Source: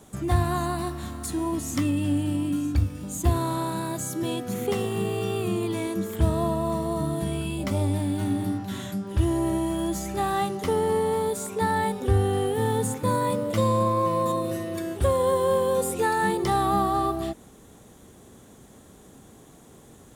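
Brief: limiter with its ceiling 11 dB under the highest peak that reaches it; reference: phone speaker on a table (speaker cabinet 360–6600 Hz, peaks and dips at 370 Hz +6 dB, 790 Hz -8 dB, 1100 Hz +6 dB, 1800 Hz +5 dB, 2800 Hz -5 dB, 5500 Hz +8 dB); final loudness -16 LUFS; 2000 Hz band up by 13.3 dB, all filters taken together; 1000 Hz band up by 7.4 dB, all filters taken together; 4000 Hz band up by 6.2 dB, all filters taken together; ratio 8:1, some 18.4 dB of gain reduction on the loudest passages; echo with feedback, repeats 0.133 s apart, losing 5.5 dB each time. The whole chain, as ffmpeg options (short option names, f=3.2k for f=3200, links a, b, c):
-af "equalizer=f=1k:t=o:g=4.5,equalizer=f=2k:t=o:g=9,equalizer=f=4k:t=o:g=4.5,acompressor=threshold=-35dB:ratio=8,alimiter=level_in=9.5dB:limit=-24dB:level=0:latency=1,volume=-9.5dB,highpass=f=360:w=0.5412,highpass=f=360:w=1.3066,equalizer=f=370:t=q:w=4:g=6,equalizer=f=790:t=q:w=4:g=-8,equalizer=f=1.1k:t=q:w=4:g=6,equalizer=f=1.8k:t=q:w=4:g=5,equalizer=f=2.8k:t=q:w=4:g=-5,equalizer=f=5.5k:t=q:w=4:g=8,lowpass=f=6.6k:w=0.5412,lowpass=f=6.6k:w=1.3066,aecho=1:1:133|266|399|532|665|798|931:0.531|0.281|0.149|0.079|0.0419|0.0222|0.0118,volume=25dB"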